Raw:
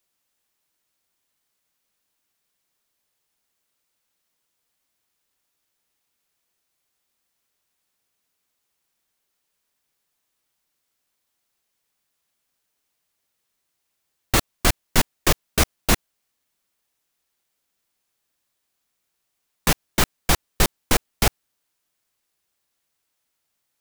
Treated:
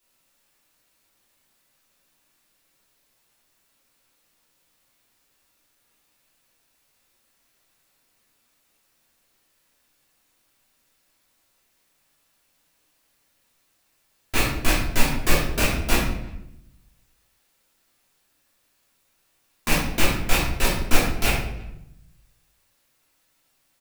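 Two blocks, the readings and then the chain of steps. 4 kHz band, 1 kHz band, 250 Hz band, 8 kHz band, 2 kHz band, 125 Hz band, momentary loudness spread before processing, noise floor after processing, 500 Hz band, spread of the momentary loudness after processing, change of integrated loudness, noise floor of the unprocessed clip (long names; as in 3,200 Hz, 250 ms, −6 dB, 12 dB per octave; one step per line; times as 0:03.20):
−1.5 dB, −1.5 dB, +0.5 dB, −3.5 dB, +1.5 dB, 0.0 dB, 3 LU, −68 dBFS, −0.5 dB, 13 LU, −1.5 dB, −77 dBFS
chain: loose part that buzzes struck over −21 dBFS, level −7 dBFS
in parallel at +0.5 dB: compressor whose output falls as the input rises −21 dBFS, ratio −1
on the sum: brickwall limiter −7.5 dBFS, peak gain reduction 9.5 dB
far-end echo of a speakerphone 330 ms, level −25 dB
rectangular room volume 210 cubic metres, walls mixed, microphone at 3 metres
level −9 dB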